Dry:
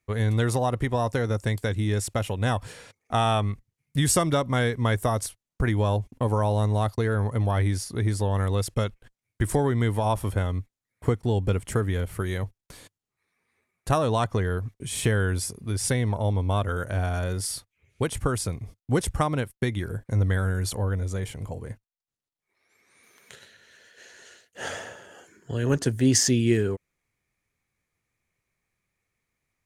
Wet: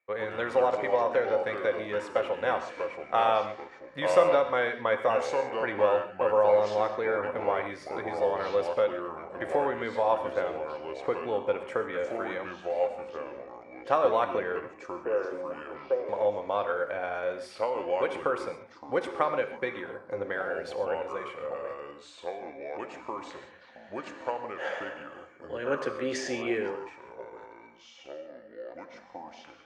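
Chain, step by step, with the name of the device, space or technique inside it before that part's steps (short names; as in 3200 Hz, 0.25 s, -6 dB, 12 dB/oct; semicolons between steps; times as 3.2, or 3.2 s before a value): 14.68–16.09 Chebyshev band-pass 320–1200 Hz, order 3; non-linear reverb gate 0.16 s flat, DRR 7.5 dB; echoes that change speed 82 ms, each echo -4 st, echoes 3, each echo -6 dB; tin-can telephone (BPF 550–2200 Hz; small resonant body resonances 530/2300 Hz, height 13 dB, ringing for 85 ms)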